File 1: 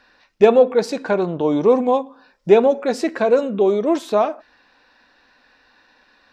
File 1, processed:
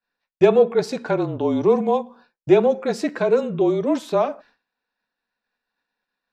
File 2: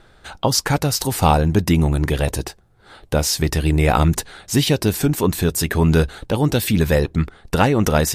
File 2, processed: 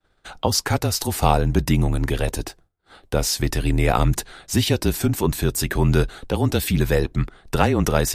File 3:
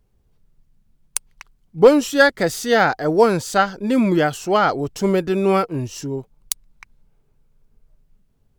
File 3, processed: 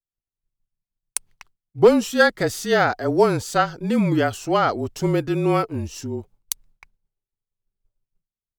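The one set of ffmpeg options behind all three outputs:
ffmpeg -i in.wav -af "afreqshift=-31,agate=range=-33dB:threshold=-41dB:ratio=3:detection=peak,volume=-2.5dB" out.wav

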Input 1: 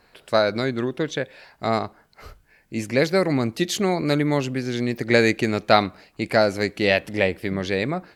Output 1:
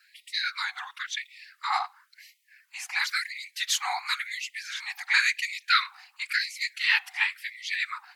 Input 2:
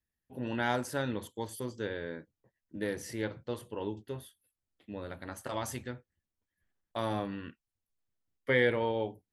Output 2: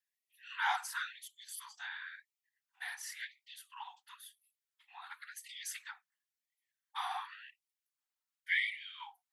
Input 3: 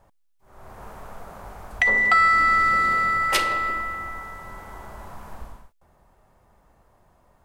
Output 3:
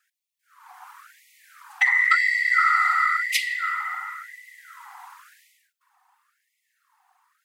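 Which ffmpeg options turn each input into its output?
ffmpeg -i in.wav -af "afftfilt=real='hypot(re,im)*cos(2*PI*random(0))':imag='hypot(re,im)*sin(2*PI*random(1))':win_size=512:overlap=0.75,afftfilt=real='re*gte(b*sr/1024,700*pow(1900/700,0.5+0.5*sin(2*PI*0.95*pts/sr)))':imag='im*gte(b*sr/1024,700*pow(1900/700,0.5+0.5*sin(2*PI*0.95*pts/sr)))':win_size=1024:overlap=0.75,volume=6.5dB" out.wav

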